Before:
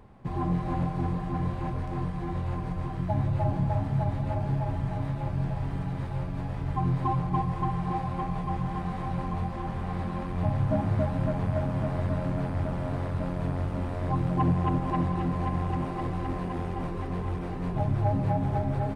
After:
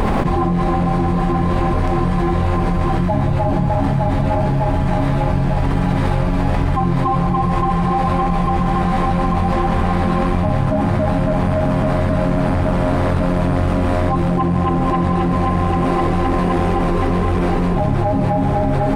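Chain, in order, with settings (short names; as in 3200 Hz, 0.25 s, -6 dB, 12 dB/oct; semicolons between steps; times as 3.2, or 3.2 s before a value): bell 110 Hz -10 dB 0.67 oct; de-hum 63.64 Hz, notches 32; fast leveller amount 100%; gain +7.5 dB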